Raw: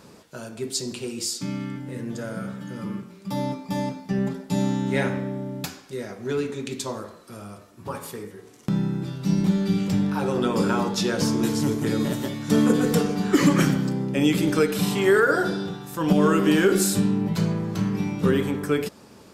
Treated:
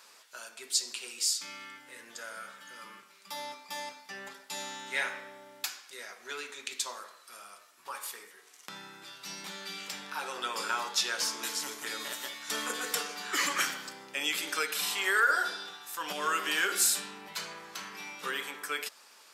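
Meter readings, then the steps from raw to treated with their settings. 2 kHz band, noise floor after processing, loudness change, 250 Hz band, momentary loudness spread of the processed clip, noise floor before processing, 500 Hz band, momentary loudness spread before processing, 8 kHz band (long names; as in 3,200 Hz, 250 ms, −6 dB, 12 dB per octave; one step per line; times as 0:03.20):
−1.5 dB, −57 dBFS, −8.5 dB, −28.0 dB, 18 LU, −49 dBFS, −18.5 dB, 16 LU, 0.0 dB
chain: high-pass filter 1,300 Hz 12 dB per octave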